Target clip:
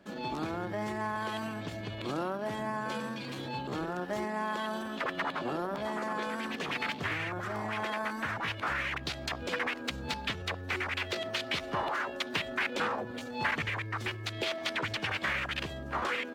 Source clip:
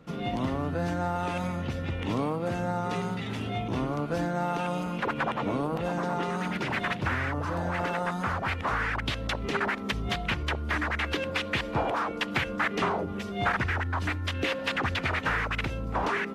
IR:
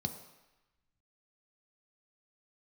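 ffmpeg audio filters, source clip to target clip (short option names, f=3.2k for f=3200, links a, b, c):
-af "lowshelf=f=160:g=-7.5,asetrate=53981,aresample=44100,atempo=0.816958,volume=-3.5dB"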